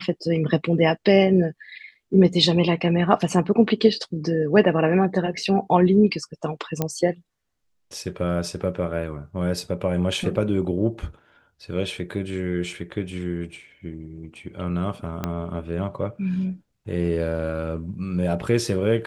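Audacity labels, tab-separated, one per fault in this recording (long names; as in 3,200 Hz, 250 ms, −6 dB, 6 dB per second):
6.820000	6.820000	click −9 dBFS
15.240000	15.240000	click −12 dBFS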